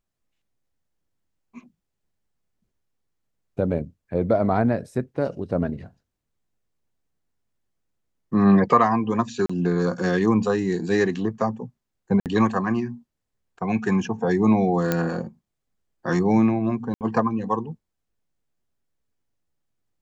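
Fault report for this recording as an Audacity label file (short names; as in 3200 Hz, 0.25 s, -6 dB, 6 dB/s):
9.460000	9.490000	gap 35 ms
12.200000	12.260000	gap 58 ms
14.920000	14.920000	pop -8 dBFS
16.940000	17.010000	gap 68 ms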